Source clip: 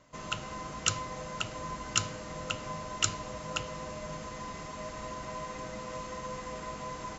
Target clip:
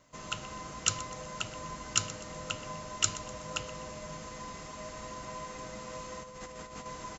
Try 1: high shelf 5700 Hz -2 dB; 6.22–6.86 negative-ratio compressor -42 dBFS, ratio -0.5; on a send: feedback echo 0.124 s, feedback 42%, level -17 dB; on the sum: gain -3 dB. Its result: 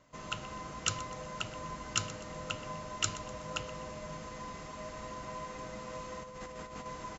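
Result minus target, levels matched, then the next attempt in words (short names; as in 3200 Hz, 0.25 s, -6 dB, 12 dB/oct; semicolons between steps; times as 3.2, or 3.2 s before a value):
8000 Hz band -3.0 dB
high shelf 5700 Hz +7.5 dB; 6.22–6.86 negative-ratio compressor -42 dBFS, ratio -0.5; on a send: feedback echo 0.124 s, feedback 42%, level -17 dB; on the sum: gain -3 dB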